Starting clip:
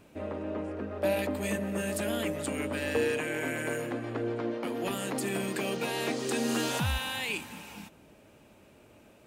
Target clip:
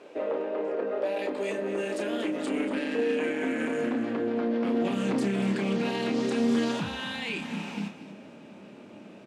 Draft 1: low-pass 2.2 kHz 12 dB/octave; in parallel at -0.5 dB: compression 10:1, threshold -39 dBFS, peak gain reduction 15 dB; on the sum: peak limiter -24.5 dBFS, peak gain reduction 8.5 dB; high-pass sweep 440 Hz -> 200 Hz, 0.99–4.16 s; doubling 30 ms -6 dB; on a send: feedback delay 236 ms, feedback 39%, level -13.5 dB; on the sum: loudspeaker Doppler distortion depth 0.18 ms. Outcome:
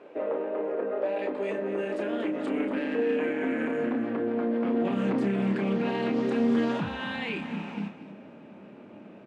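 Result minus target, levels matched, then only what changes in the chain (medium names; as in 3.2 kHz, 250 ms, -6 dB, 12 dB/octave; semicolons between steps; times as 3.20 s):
4 kHz band -5.5 dB
change: low-pass 5.3 kHz 12 dB/octave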